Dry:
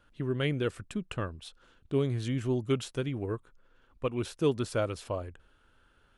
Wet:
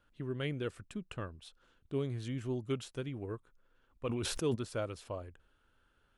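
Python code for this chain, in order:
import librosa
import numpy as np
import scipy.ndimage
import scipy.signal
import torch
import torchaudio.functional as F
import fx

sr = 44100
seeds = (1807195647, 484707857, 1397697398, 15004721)

y = fx.sustainer(x, sr, db_per_s=21.0, at=(4.05, 4.54), fade=0.02)
y = y * 10.0 ** (-7.0 / 20.0)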